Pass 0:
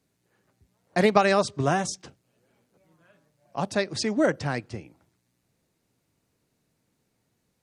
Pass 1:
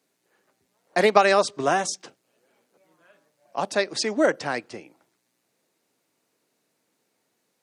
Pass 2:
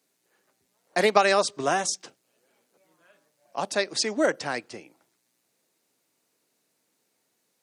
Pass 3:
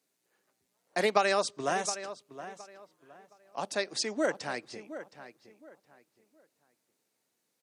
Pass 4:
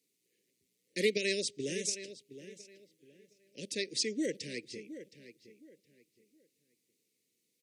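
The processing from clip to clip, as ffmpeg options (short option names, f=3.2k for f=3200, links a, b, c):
-af "highpass=330,volume=3.5dB"
-af "highshelf=f=3.6k:g=6,volume=-3dB"
-filter_complex "[0:a]asplit=2[a][b];[b]adelay=717,lowpass=f=2.8k:p=1,volume=-12.5dB,asplit=2[c][d];[d]adelay=717,lowpass=f=2.8k:p=1,volume=0.27,asplit=2[e][f];[f]adelay=717,lowpass=f=2.8k:p=1,volume=0.27[g];[a][c][e][g]amix=inputs=4:normalize=0,volume=-6dB"
-af "asuperstop=centerf=1000:order=12:qfactor=0.67"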